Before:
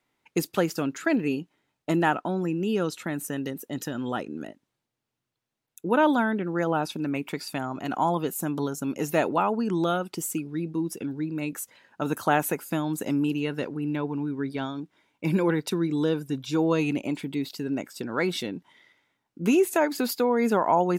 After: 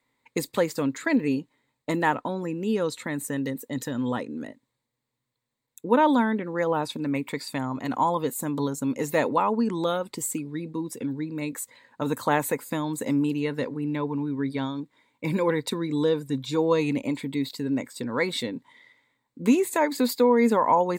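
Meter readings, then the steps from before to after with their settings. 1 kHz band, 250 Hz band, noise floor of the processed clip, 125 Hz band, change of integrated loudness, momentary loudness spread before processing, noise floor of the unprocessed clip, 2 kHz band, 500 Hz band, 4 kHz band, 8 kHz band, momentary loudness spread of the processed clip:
+1.5 dB, +0.5 dB, -82 dBFS, -1.0 dB, +1.0 dB, 10 LU, -84 dBFS, 0.0 dB, +1.5 dB, +1.0 dB, +1.5 dB, 11 LU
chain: ripple EQ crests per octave 1, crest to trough 9 dB

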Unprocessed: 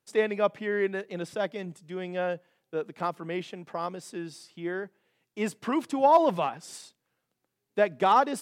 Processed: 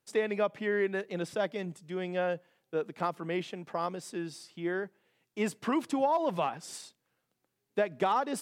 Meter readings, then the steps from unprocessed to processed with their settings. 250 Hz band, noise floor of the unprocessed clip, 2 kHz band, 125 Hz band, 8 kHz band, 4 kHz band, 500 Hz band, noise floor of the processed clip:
-2.0 dB, -82 dBFS, -2.0 dB, -1.0 dB, -0.5 dB, -2.5 dB, -3.5 dB, -82 dBFS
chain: compressor 10:1, threshold -24 dBFS, peak gain reduction 10.5 dB

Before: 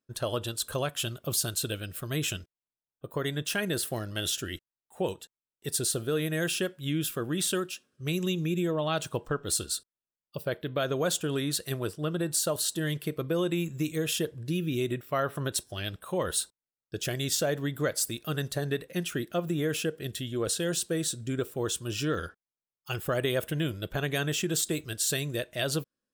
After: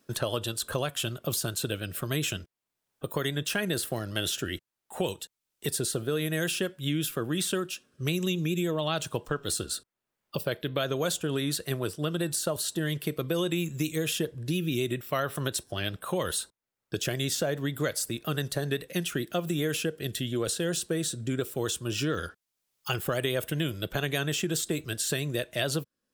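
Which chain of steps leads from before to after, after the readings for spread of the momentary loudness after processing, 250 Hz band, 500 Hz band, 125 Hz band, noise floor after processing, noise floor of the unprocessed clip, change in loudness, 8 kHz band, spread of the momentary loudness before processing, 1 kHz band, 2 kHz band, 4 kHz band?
5 LU, +0.5 dB, 0.0 dB, +1.0 dB, under -85 dBFS, under -85 dBFS, 0.0 dB, -1.5 dB, 6 LU, +0.5 dB, +1.0 dB, +1.0 dB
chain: vibrato 7.3 Hz 30 cents; three-band squash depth 70%

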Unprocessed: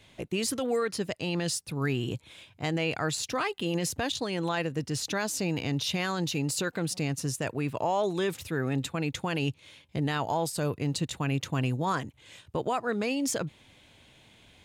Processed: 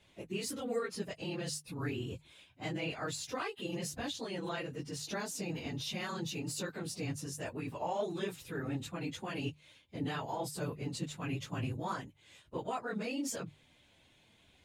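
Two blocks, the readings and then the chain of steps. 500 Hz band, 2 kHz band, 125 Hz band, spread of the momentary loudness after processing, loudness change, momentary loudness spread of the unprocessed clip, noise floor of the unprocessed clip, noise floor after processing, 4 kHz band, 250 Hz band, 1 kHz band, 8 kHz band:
-8.5 dB, -8.5 dB, -9.5 dB, 5 LU, -8.5 dB, 5 LU, -59 dBFS, -66 dBFS, -8.5 dB, -8.5 dB, -8.5 dB, -8.5 dB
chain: phase scrambler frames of 50 ms; notches 50/100/150 Hz; gain -8.5 dB

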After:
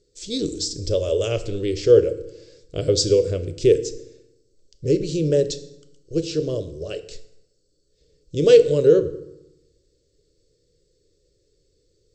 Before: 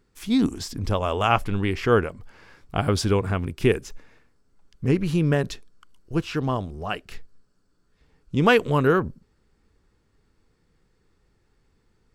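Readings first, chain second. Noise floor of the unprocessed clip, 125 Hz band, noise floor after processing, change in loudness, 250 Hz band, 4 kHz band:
-67 dBFS, -2.5 dB, -67 dBFS, +3.5 dB, -2.0 dB, +3.5 dB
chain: EQ curve 150 Hz 0 dB, 240 Hz -10 dB, 360 Hz +8 dB, 560 Hz +11 dB, 790 Hz -24 dB, 2600 Hz -5 dB, 4200 Hz +10 dB, 7800 Hz +12 dB, 11000 Hz -29 dB; FDN reverb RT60 0.87 s, low-frequency decay 1.25×, high-frequency decay 0.75×, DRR 9.5 dB; gain -2.5 dB

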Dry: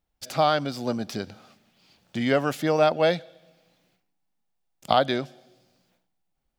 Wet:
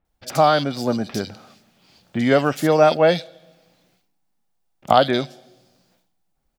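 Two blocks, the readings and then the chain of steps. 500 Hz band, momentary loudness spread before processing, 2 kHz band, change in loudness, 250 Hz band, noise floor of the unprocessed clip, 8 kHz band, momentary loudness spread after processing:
+6.0 dB, 14 LU, +4.5 dB, +5.5 dB, +6.0 dB, -76 dBFS, +6.0 dB, 14 LU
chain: bands offset in time lows, highs 50 ms, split 2700 Hz; gain +6 dB

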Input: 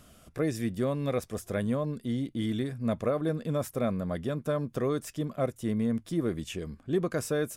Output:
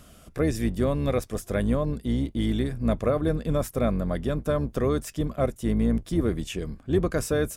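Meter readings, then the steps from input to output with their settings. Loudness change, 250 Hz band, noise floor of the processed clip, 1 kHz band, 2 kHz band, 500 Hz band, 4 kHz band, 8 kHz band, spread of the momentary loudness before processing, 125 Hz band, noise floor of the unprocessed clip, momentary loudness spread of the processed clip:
+4.5 dB, +4.0 dB, -52 dBFS, +4.0 dB, +4.0 dB, +4.0 dB, +4.0 dB, +4.0 dB, 4 LU, +5.5 dB, -58 dBFS, 4 LU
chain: octaver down 2 oct, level -3 dB; gain +4 dB

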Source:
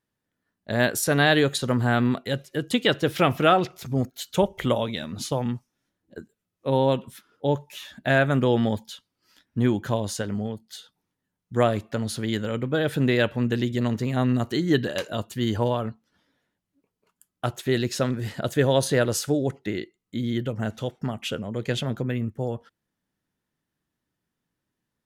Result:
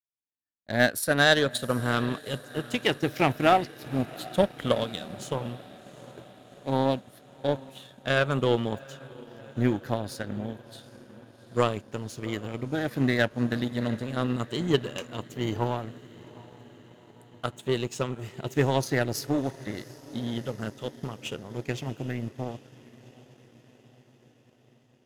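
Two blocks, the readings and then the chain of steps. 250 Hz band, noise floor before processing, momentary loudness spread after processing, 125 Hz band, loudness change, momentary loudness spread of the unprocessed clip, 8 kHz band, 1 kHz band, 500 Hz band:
-4.5 dB, -83 dBFS, 17 LU, -5.0 dB, -3.5 dB, 11 LU, -5.5 dB, -2.0 dB, -3.5 dB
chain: moving spectral ripple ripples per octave 0.73, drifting -0.32 Hz, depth 9 dB; diffused feedback echo 0.741 s, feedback 70%, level -14.5 dB; power-law curve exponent 1.4

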